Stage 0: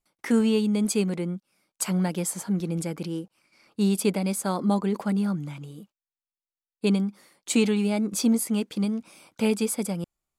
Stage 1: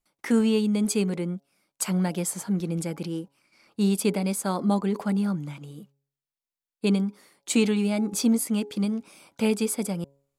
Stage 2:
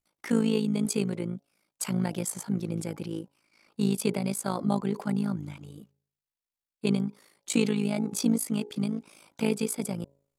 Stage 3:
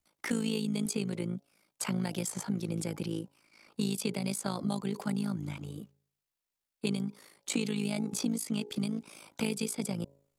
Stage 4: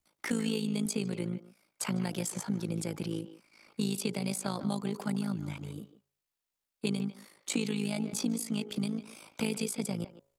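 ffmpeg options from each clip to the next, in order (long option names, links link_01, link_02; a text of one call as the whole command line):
ffmpeg -i in.wav -af "bandreject=frequency=138.9:width_type=h:width=4,bandreject=frequency=277.8:width_type=h:width=4,bandreject=frequency=416.7:width_type=h:width=4,bandreject=frequency=555.6:width_type=h:width=4,bandreject=frequency=694.5:width_type=h:width=4,bandreject=frequency=833.4:width_type=h:width=4,bandreject=frequency=972.3:width_type=h:width=4" out.wav
ffmpeg -i in.wav -af "tremolo=f=54:d=0.788" out.wav
ffmpeg -i in.wav -filter_complex "[0:a]acrossover=split=180|2600|7100[link_01][link_02][link_03][link_04];[link_01]acompressor=threshold=-41dB:ratio=4[link_05];[link_02]acompressor=threshold=-38dB:ratio=4[link_06];[link_03]acompressor=threshold=-42dB:ratio=4[link_07];[link_04]acompressor=threshold=-46dB:ratio=4[link_08];[link_05][link_06][link_07][link_08]amix=inputs=4:normalize=0,volume=3.5dB" out.wav
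ffmpeg -i in.wav -filter_complex "[0:a]asplit=2[link_01][link_02];[link_02]adelay=150,highpass=300,lowpass=3400,asoftclip=type=hard:threshold=-25.5dB,volume=-12dB[link_03];[link_01][link_03]amix=inputs=2:normalize=0" out.wav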